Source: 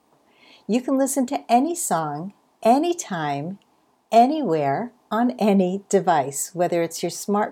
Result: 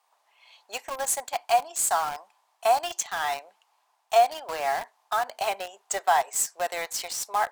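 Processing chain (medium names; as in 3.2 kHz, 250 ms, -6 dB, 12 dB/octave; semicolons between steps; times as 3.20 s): high-pass 770 Hz 24 dB/octave; in parallel at -3.5 dB: bit crusher 5-bit; on the sum: trim -3.5 dB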